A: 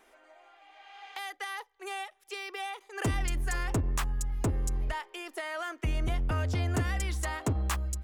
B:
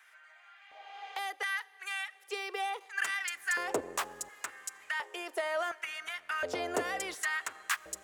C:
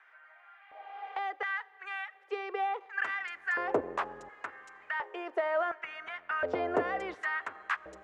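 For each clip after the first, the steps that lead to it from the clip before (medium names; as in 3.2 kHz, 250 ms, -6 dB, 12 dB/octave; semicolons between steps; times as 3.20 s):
LFO high-pass square 0.7 Hz 490–1600 Hz; on a send at -21.5 dB: reverberation RT60 3.3 s, pre-delay 30 ms
low-pass 1.6 kHz 12 dB/octave; trim +4 dB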